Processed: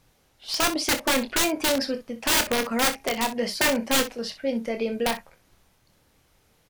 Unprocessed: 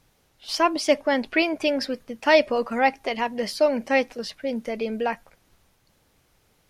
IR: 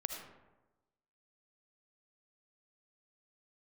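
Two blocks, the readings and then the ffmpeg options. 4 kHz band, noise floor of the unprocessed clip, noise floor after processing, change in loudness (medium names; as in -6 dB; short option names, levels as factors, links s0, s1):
+5.0 dB, -65 dBFS, -64 dBFS, -0.5 dB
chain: -af "aeval=exprs='(mod(6.31*val(0)+1,2)-1)/6.31':c=same,aecho=1:1:26|62:0.376|0.211"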